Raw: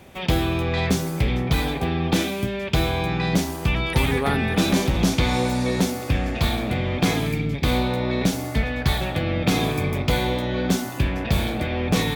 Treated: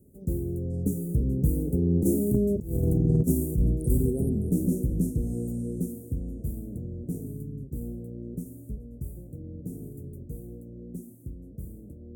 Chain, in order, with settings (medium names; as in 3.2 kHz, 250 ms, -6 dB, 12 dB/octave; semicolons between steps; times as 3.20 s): Doppler pass-by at 2.76 s, 17 m/s, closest 6.1 m; inverse Chebyshev band-stop 970–4300 Hz, stop band 50 dB; peaking EQ 1.5 kHz -9.5 dB 2.1 oct; compressor with a negative ratio -29 dBFS, ratio -0.5; trim +8.5 dB